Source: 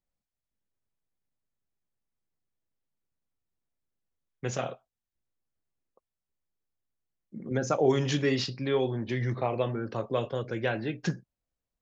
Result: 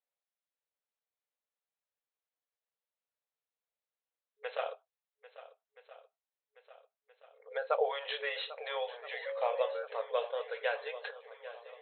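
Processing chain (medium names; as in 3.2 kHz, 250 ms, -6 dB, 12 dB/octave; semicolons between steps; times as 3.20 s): shuffle delay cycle 1324 ms, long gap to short 1.5:1, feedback 51%, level -16 dB; FFT band-pass 430–4200 Hz; 9.25–9.82 s: whistle 550 Hz -33 dBFS; trim -2.5 dB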